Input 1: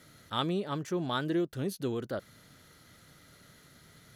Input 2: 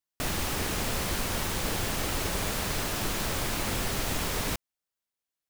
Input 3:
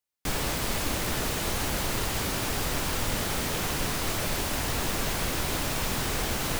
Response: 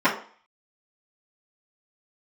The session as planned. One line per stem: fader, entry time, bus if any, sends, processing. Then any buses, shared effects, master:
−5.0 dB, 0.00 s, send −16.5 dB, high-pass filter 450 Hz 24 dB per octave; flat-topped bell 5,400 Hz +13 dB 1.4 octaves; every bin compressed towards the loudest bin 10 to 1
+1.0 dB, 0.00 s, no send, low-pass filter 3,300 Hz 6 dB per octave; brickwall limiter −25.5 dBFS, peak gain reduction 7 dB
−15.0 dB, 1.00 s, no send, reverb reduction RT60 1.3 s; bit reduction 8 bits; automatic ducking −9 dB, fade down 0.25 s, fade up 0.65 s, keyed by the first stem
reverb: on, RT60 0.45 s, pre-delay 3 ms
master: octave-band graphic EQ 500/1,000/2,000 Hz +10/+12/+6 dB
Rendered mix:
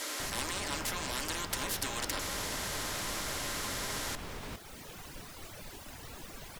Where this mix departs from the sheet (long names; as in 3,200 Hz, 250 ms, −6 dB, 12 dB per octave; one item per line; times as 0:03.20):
stem 2 +1.0 dB → −7.5 dB
stem 3: entry 1.00 s → 1.35 s
master: missing octave-band graphic EQ 500/1,000/2,000 Hz +10/+12/+6 dB